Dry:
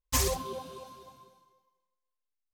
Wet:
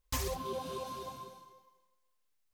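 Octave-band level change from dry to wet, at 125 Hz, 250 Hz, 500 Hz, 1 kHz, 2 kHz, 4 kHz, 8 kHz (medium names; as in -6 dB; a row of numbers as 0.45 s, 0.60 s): -5.5 dB, -3.0 dB, -3.0 dB, -2.0 dB, -6.5 dB, -7.0 dB, -10.5 dB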